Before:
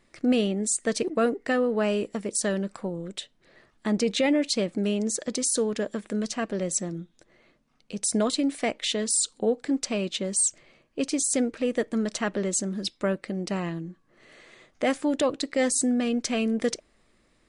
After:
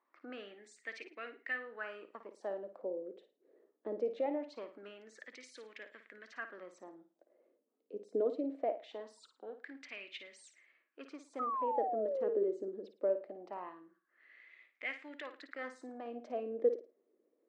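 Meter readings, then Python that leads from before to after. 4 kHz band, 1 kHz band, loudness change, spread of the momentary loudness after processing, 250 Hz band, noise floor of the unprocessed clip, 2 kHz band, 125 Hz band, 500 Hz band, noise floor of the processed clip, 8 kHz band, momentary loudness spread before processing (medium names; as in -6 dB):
-23.5 dB, -6.0 dB, -13.0 dB, 19 LU, -21.0 dB, -66 dBFS, -10.5 dB, under -30 dB, -9.5 dB, -81 dBFS, under -35 dB, 9 LU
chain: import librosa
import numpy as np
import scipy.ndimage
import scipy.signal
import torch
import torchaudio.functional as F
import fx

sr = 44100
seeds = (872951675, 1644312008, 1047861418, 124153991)

y = scipy.signal.sosfilt(scipy.signal.butter(2, 5200.0, 'lowpass', fs=sr, output='sos'), x)
y = fx.filter_lfo_bandpass(y, sr, shape='sine', hz=0.22, low_hz=430.0, high_hz=2200.0, q=4.3)
y = fx.ladder_highpass(y, sr, hz=240.0, resonance_pct=45)
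y = fx.room_flutter(y, sr, wall_m=9.4, rt60_s=0.32)
y = fx.spec_paint(y, sr, seeds[0], shape='fall', start_s=11.39, length_s=1.09, low_hz=380.0, high_hz=1300.0, level_db=-41.0)
y = F.gain(torch.from_numpy(y), 5.0).numpy()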